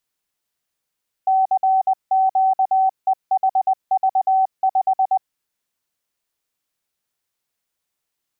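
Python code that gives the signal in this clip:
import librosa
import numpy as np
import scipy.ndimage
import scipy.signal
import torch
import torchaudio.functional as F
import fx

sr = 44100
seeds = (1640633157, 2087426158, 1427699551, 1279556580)

y = fx.morse(sr, text='CQEHV5', wpm=20, hz=763.0, level_db=-13.0)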